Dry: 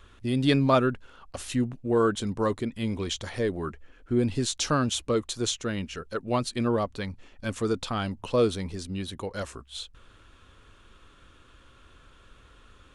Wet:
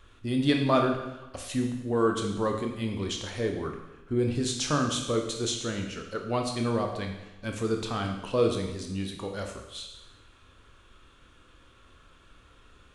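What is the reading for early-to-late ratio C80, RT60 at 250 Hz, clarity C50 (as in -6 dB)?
7.5 dB, 0.95 s, 5.5 dB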